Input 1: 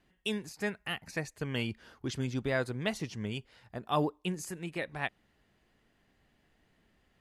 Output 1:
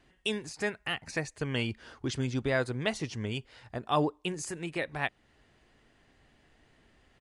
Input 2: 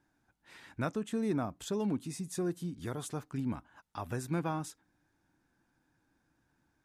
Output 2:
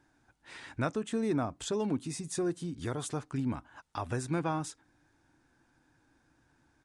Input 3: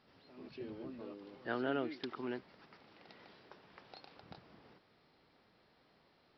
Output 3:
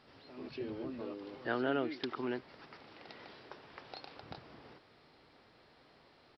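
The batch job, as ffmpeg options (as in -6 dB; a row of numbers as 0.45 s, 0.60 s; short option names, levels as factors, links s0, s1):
-filter_complex "[0:a]equalizer=f=190:w=5.9:g=-9,asplit=2[s0][s1];[s1]acompressor=threshold=0.00562:ratio=6,volume=0.794[s2];[s0][s2]amix=inputs=2:normalize=0,aresample=22050,aresample=44100,volume=1.19"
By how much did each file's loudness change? +2.0 LU, +2.0 LU, +2.0 LU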